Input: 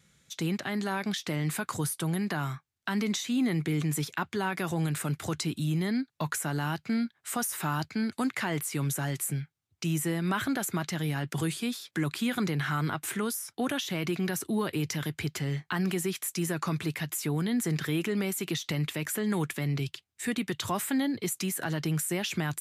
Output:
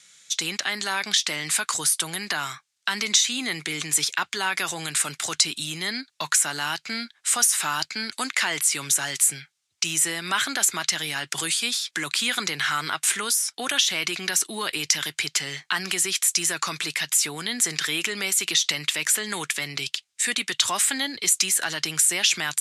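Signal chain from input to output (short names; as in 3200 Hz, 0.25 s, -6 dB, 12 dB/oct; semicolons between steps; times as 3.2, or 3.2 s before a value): weighting filter ITU-R 468; gain +4.5 dB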